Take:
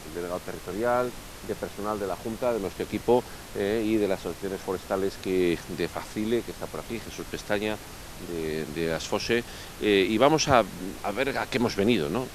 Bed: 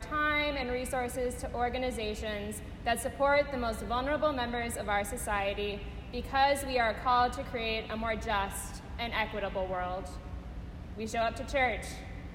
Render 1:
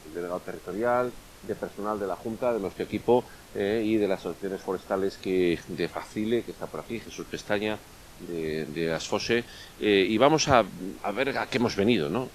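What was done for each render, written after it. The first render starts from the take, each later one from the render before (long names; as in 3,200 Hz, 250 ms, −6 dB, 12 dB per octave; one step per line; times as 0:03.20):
noise reduction from a noise print 7 dB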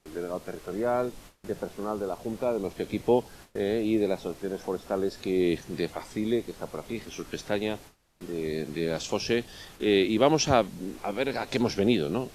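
noise gate with hold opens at −36 dBFS
dynamic equaliser 1,500 Hz, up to −6 dB, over −41 dBFS, Q 0.86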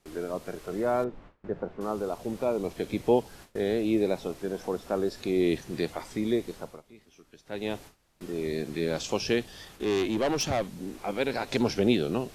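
0:01.04–0:01.81: low-pass filter 1,700 Hz
0:06.54–0:07.74: duck −18.5 dB, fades 0.29 s
0:09.49–0:11.08: tube saturation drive 21 dB, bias 0.35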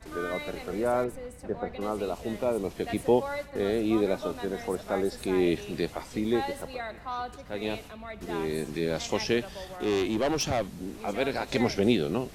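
mix in bed −8 dB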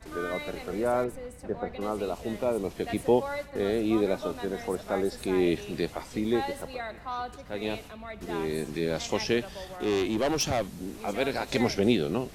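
0:10.18–0:11.75: high-shelf EQ 5,600 Hz +4 dB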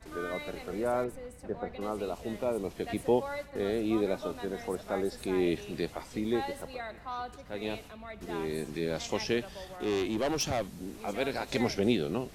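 level −3.5 dB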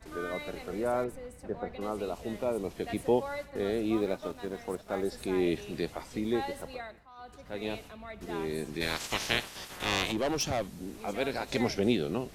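0:03.96–0:05.03: mu-law and A-law mismatch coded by A
0:06.74–0:07.48: duck −15.5 dB, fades 0.33 s
0:08.80–0:10.11: ceiling on every frequency bin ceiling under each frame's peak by 25 dB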